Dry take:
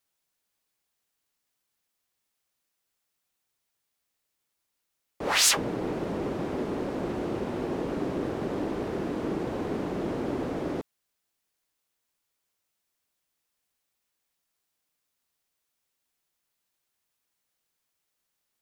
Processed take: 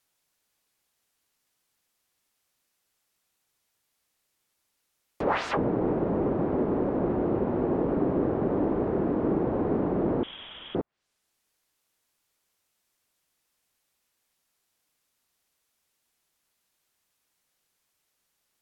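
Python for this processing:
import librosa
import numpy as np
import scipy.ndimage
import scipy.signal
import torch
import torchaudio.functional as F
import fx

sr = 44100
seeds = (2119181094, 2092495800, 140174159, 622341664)

y = fx.freq_invert(x, sr, carrier_hz=3600, at=(10.23, 10.75))
y = fx.env_lowpass_down(y, sr, base_hz=1100.0, full_db=-30.5)
y = y * 10.0 ** (5.0 / 20.0)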